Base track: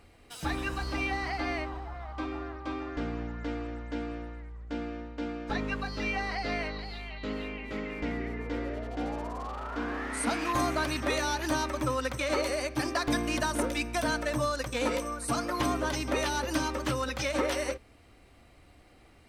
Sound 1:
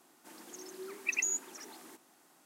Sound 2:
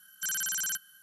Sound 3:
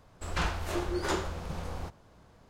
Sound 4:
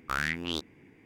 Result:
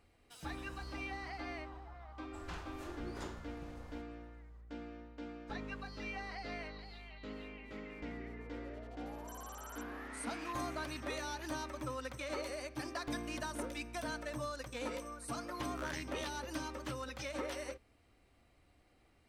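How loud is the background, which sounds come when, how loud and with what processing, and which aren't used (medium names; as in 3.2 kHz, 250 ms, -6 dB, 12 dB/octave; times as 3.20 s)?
base track -11.5 dB
2.12 s: add 3 -16 dB
9.06 s: add 2 -17.5 dB + compression, threshold -34 dBFS
15.68 s: add 4 -15.5 dB
not used: 1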